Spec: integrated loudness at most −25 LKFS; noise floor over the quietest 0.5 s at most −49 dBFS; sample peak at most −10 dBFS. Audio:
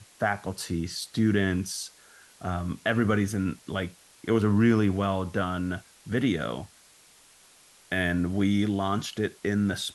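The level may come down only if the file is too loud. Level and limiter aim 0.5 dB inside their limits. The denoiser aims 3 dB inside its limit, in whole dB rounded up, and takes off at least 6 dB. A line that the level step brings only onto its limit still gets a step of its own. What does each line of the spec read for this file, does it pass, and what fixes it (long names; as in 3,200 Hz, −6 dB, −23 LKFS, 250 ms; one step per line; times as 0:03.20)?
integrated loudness −27.5 LKFS: in spec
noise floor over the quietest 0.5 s −57 dBFS: in spec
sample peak −11.0 dBFS: in spec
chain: no processing needed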